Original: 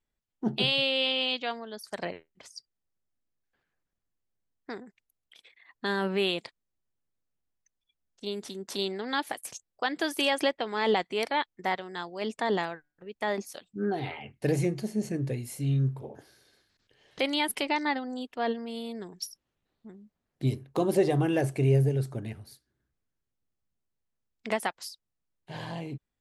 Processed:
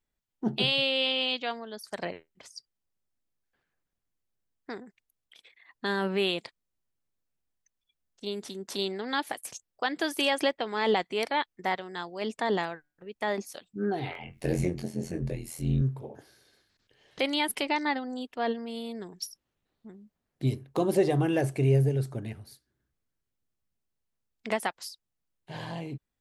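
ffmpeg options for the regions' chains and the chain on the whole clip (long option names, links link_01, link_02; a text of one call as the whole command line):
ffmpeg -i in.wav -filter_complex "[0:a]asettb=1/sr,asplit=3[link_01][link_02][link_03];[link_01]atrim=end=14.134[link_04];[link_02]atrim=start=14.13:end=15.82,asetpts=PTS-STARTPTS,afade=type=in:duration=0.004:curve=qsin,afade=type=out:start_time=1.686:duration=0.004:curve=qsin,acompressor=mode=upward:threshold=-33dB:ratio=2.5:attack=3.2:release=140:knee=2.83:detection=peak,tremolo=f=83:d=0.889,asplit=2[link_05][link_06];[link_06]adelay=22,volume=-4.5dB[link_07];[link_05][link_07]amix=inputs=2:normalize=0,atrim=end_sample=74529[link_08];[link_03]atrim=start=15.816[link_09];[link_04][link_08]acrossfade=duration=0.004:curve1=hsin:curve2=qsin[link_10];[link_10][link_09]acrossfade=duration=0.004:curve1=qsin:curve2=hsin" out.wav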